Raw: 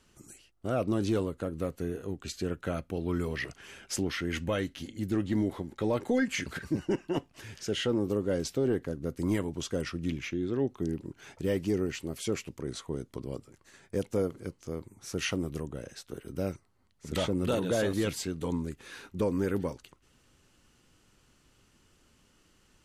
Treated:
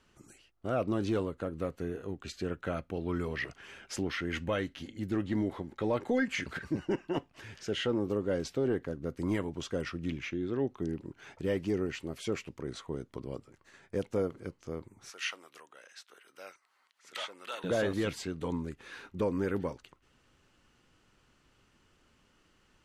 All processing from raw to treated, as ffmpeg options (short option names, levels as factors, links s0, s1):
-filter_complex "[0:a]asettb=1/sr,asplit=3[s0][s1][s2];[s0]atrim=end=15.104[s3];[s1]atrim=start=15.1:end=17.64,asetpts=PTS-STARTPTS,afade=t=in:d=0.004:c=qsin,afade=t=out:st=2.536:d=0.004:c=qsin,highpass=1200,acompressor=mode=upward:threshold=0.00141:ratio=2.5:attack=3.2:release=140:knee=2.83:detection=peak[s4];[s2]atrim=start=17.636[s5];[s3][s4]acrossfade=d=0.004:c1=hsin:c2=qsin[s6];[s6][s5]acrossfade=d=0.004:c1=qsin:c2=hsin,lowpass=f=2000:p=1,tiltshelf=f=680:g=-3.5"